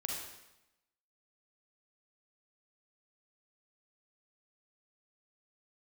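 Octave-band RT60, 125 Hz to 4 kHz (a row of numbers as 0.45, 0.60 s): 1.0, 0.95, 0.90, 0.90, 0.90, 0.85 s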